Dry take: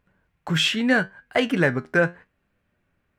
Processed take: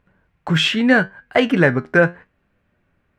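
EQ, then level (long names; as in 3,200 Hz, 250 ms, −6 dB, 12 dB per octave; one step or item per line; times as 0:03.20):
high-shelf EQ 5,100 Hz −10.5 dB
+6.0 dB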